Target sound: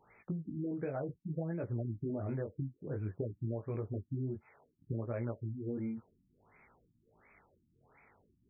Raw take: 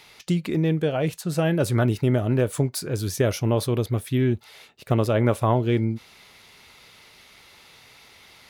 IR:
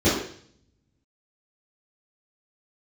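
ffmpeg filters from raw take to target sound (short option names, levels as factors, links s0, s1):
-af "flanger=delay=17:depth=5.3:speed=0.58,acompressor=threshold=0.0447:ratio=10,afftfilt=real='re*lt(b*sr/1024,320*pow(2600/320,0.5+0.5*sin(2*PI*1.4*pts/sr)))':imag='im*lt(b*sr/1024,320*pow(2600/320,0.5+0.5*sin(2*PI*1.4*pts/sr)))':win_size=1024:overlap=0.75,volume=0.473"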